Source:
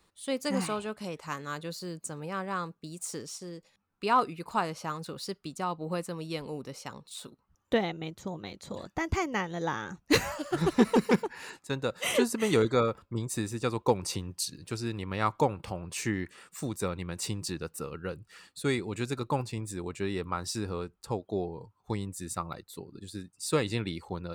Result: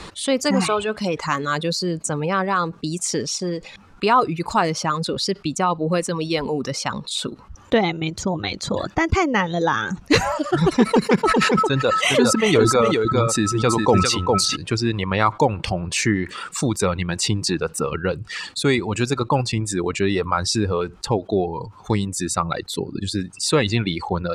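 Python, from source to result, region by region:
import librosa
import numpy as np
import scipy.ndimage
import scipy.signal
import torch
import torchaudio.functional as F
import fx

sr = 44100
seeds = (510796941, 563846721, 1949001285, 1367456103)

y = fx.dmg_tone(x, sr, hz=1300.0, level_db=-43.0, at=(11.23, 14.55), fade=0.02)
y = fx.echo_single(y, sr, ms=404, db=-5.0, at=(11.23, 14.55), fade=0.02)
y = fx.sustainer(y, sr, db_per_s=47.0, at=(11.23, 14.55), fade=0.02)
y = fx.dereverb_blind(y, sr, rt60_s=1.5)
y = scipy.signal.sosfilt(scipy.signal.butter(2, 6400.0, 'lowpass', fs=sr, output='sos'), y)
y = fx.env_flatten(y, sr, amount_pct=50)
y = F.gain(torch.from_numpy(y), 6.0).numpy()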